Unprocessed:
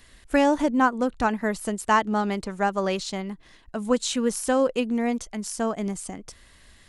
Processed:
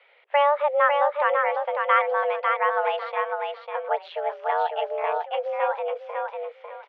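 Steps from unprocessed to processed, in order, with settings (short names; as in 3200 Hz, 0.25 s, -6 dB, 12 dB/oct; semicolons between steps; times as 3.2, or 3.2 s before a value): feedback echo 0.549 s, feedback 25%, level -4 dB; 3.88–5.26 ring modulator 83 Hz; mistuned SSB +290 Hz 160–2800 Hz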